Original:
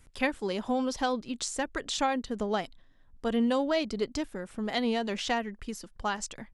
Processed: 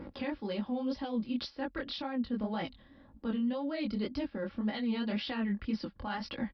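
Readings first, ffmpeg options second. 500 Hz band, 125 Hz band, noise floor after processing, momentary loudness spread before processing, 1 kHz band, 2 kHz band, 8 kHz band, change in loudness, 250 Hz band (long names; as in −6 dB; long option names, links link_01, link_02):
−8.0 dB, +1.5 dB, −60 dBFS, 8 LU, −9.5 dB, −7.5 dB, below −25 dB, −4.5 dB, −1.0 dB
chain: -filter_complex "[0:a]acrossover=split=200|930[link_01][link_02][link_03];[link_01]highpass=76[link_04];[link_02]acompressor=mode=upward:threshold=-39dB:ratio=2.5[link_05];[link_04][link_05][link_03]amix=inputs=3:normalize=0,aecho=1:1:3.6:0.56,alimiter=limit=-22.5dB:level=0:latency=1:release=272,aresample=11025,aresample=44100,flanger=delay=18:depth=7:speed=1.9,areverse,acompressor=threshold=-43dB:ratio=6,areverse,bass=frequency=250:gain=9,treble=frequency=4000:gain=-2,bandreject=frequency=700:width=18,volume=8dB" -ar 48000 -c:a libopus -b:a 64k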